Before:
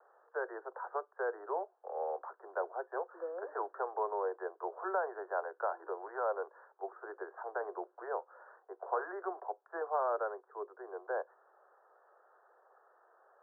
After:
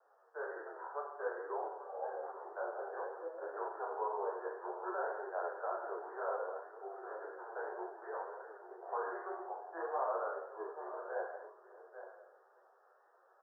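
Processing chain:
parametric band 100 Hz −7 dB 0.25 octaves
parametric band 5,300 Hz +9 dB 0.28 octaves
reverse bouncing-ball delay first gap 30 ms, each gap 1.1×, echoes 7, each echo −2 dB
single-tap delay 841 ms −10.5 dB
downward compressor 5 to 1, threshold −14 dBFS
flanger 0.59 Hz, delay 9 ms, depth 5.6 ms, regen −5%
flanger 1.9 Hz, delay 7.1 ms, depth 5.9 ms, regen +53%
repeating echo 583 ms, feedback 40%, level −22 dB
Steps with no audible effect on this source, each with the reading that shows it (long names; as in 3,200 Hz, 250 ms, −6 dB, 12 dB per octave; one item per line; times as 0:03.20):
parametric band 100 Hz: nothing at its input below 300 Hz
parametric band 5,300 Hz: nothing at its input above 1,800 Hz
downward compressor, threshold −14 dBFS: peak of its input −18.0 dBFS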